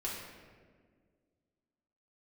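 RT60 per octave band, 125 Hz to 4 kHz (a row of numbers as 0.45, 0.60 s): 2.2, 2.4, 2.1, 1.4, 1.3, 0.95 s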